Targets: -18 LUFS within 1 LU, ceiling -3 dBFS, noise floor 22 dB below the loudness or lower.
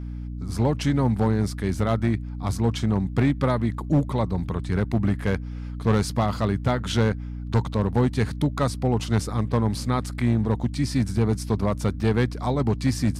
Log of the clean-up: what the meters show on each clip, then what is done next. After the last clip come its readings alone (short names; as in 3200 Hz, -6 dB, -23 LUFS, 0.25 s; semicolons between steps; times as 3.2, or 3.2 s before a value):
clipped 1.5%; flat tops at -14.0 dBFS; hum 60 Hz; harmonics up to 300 Hz; hum level -31 dBFS; loudness -24.5 LUFS; peak -14.0 dBFS; loudness target -18.0 LUFS
-> clip repair -14 dBFS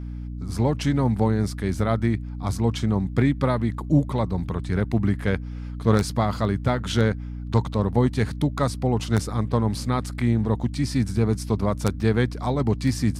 clipped 0.0%; hum 60 Hz; harmonics up to 300 Hz; hum level -31 dBFS
-> notches 60/120/180/240/300 Hz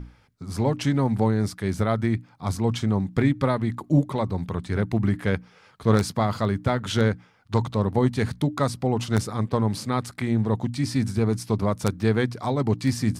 hum none; loudness -25.0 LUFS; peak -5.5 dBFS; loudness target -18.0 LUFS
-> gain +7 dB; limiter -3 dBFS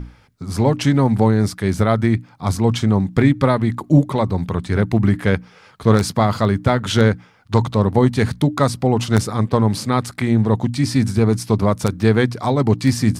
loudness -18.0 LUFS; peak -3.0 dBFS; noise floor -49 dBFS